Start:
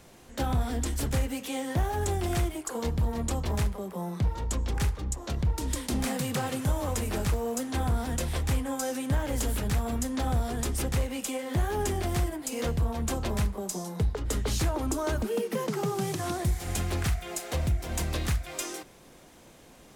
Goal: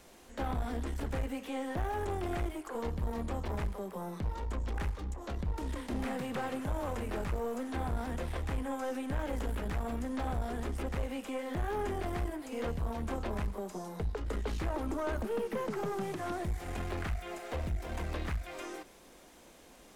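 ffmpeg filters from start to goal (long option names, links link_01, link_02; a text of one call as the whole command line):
ffmpeg -i in.wav -filter_complex "[0:a]acrossover=split=2600[link_01][link_02];[link_02]acompressor=threshold=-52dB:ratio=4:attack=1:release=60[link_03];[link_01][link_03]amix=inputs=2:normalize=0,equalizer=frequency=120:width_type=o:width=0.82:gain=-13,aeval=exprs='(tanh(22.4*val(0)+0.4)-tanh(0.4))/22.4':channel_layout=same,volume=-1dB" out.wav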